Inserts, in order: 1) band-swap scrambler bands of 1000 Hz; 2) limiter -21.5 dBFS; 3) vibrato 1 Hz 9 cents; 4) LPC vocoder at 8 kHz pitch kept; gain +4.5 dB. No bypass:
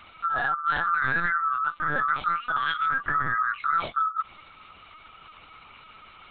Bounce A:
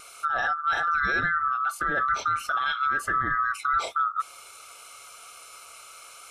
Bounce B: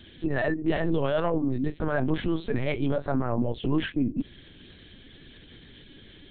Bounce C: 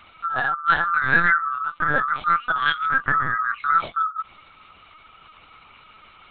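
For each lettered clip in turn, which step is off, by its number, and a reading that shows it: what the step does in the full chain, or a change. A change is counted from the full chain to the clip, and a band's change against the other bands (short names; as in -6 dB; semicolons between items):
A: 4, 125 Hz band -3.0 dB; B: 1, 1 kHz band -25.0 dB; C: 2, mean gain reduction 1.5 dB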